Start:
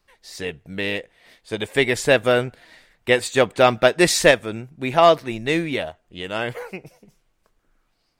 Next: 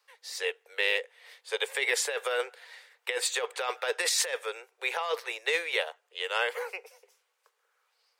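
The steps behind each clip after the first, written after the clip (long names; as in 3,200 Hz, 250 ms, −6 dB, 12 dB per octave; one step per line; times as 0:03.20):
Butterworth high-pass 440 Hz 72 dB per octave
parametric band 650 Hz −14 dB 0.23 octaves
compressor whose output falls as the input rises −24 dBFS, ratio −1
level −4 dB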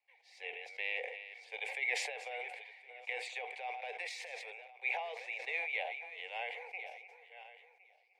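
feedback delay that plays each chunk backwards 531 ms, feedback 41%, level −13 dB
pair of resonant band-passes 1,300 Hz, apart 1.6 octaves
level that may fall only so fast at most 44 dB per second
level −2.5 dB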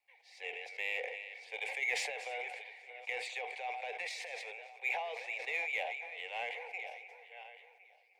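in parallel at −6.5 dB: soft clipping −38.5 dBFS, distortion −8 dB
on the sum: feedback echo with a swinging delay time 275 ms, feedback 41%, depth 52 cents, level −20 dB
level −1 dB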